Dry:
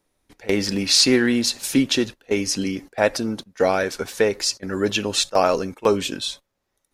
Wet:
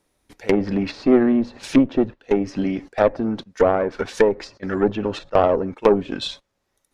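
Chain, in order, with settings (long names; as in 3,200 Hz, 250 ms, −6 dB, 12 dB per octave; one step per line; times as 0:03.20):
treble cut that deepens with the level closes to 830 Hz, closed at −17.5 dBFS
harmonic generator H 6 −21 dB, 7 −42 dB, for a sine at −4 dBFS
level +3.5 dB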